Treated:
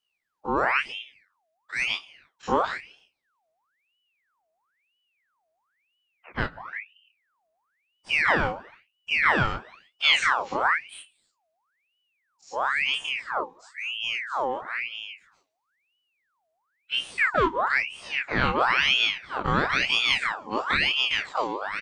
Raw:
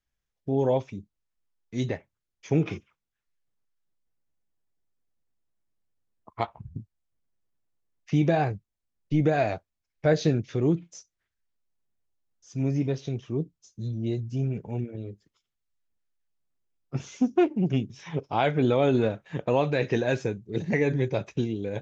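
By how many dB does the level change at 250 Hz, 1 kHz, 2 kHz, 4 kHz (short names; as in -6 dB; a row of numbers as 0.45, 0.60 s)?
-9.5, +7.5, +14.0, +17.5 dB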